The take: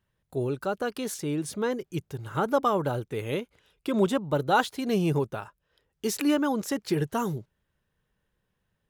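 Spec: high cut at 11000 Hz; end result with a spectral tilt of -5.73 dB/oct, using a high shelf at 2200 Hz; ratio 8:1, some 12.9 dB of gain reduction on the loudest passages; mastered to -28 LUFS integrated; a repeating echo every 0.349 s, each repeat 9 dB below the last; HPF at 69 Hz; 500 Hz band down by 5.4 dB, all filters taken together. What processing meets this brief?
HPF 69 Hz; LPF 11000 Hz; bell 500 Hz -6.5 dB; high shelf 2200 Hz -5 dB; compressor 8:1, threshold -35 dBFS; feedback echo 0.349 s, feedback 35%, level -9 dB; gain +12 dB

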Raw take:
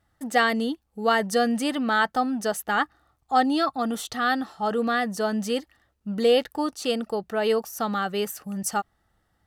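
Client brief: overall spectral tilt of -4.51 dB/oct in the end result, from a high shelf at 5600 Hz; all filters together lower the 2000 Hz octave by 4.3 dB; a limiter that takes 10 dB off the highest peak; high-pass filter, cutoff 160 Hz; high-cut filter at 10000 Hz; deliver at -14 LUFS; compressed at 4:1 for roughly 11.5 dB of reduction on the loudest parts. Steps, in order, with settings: HPF 160 Hz; LPF 10000 Hz; bell 2000 Hz -5 dB; high shelf 5600 Hz -7.5 dB; compressor 4:1, threshold -30 dBFS; gain +23.5 dB; limiter -5.5 dBFS

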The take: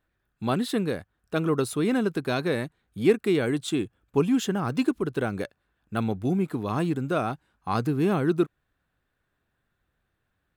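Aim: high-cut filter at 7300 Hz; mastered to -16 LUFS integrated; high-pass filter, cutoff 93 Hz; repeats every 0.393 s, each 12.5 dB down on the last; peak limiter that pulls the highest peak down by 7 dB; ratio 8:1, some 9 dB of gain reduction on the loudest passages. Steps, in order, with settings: HPF 93 Hz; LPF 7300 Hz; compressor 8:1, threshold -25 dBFS; limiter -21.5 dBFS; feedback echo 0.393 s, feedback 24%, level -12.5 dB; gain +16.5 dB

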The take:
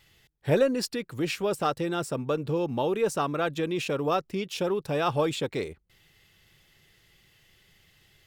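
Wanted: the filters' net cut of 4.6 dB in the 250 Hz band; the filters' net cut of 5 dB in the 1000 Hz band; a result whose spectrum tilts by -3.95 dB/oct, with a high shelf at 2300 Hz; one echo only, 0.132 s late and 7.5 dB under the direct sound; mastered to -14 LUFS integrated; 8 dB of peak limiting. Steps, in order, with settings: bell 250 Hz -6.5 dB; bell 1000 Hz -8 dB; high shelf 2300 Hz +5.5 dB; limiter -21 dBFS; echo 0.132 s -7.5 dB; gain +17 dB

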